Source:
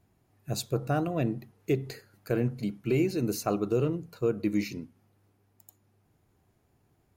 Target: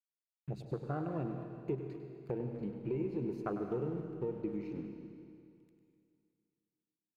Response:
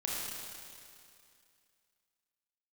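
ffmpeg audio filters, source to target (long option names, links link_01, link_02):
-filter_complex "[0:a]afwtdn=0.02,aeval=exprs='sgn(val(0))*max(abs(val(0))-0.00112,0)':channel_layout=same,aemphasis=mode=reproduction:type=75fm,acompressor=threshold=-41dB:ratio=3,equalizer=frequency=100:width_type=o:width=0.67:gain=-10,equalizer=frequency=250:width_type=o:width=0.67:gain=-7,equalizer=frequency=630:width_type=o:width=0.67:gain=-7,equalizer=frequency=2500:width_type=o:width=0.67:gain=5,equalizer=frequency=6300:width_type=o:width=0.67:gain=-4,asplit=2[link_01][link_02];[link_02]adelay=250,highpass=300,lowpass=3400,asoftclip=type=hard:threshold=-38dB,volume=-15dB[link_03];[link_01][link_03]amix=inputs=2:normalize=0,asplit=2[link_04][link_05];[1:a]atrim=start_sample=2205,adelay=100[link_06];[link_05][link_06]afir=irnorm=-1:irlink=0,volume=-9.5dB[link_07];[link_04][link_07]amix=inputs=2:normalize=0,volume=6.5dB"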